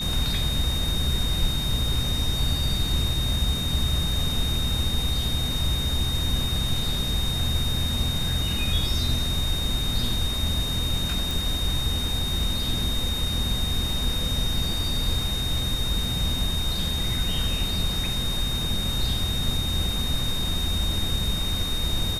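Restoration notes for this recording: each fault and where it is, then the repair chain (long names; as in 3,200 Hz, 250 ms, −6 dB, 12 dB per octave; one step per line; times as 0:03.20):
whistle 3,700 Hz −28 dBFS
0:11.31: click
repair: click removal
notch filter 3,700 Hz, Q 30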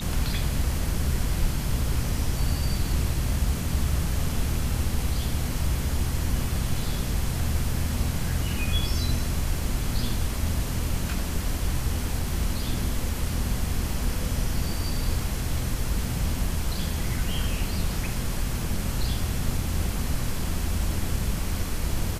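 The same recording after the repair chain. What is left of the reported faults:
none of them is left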